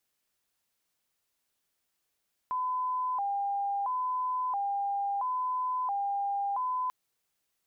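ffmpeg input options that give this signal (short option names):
-f lavfi -i "aevalsrc='0.0398*sin(2*PI*(905.5*t+104.5/0.74*(0.5-abs(mod(0.74*t,1)-0.5))))':d=4.39:s=44100"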